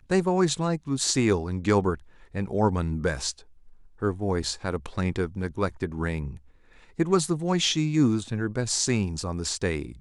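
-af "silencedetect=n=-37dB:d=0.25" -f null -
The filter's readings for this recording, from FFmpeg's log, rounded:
silence_start: 1.96
silence_end: 2.34 | silence_duration: 0.39
silence_start: 3.39
silence_end: 4.02 | silence_duration: 0.63
silence_start: 6.36
silence_end: 6.99 | silence_duration: 0.63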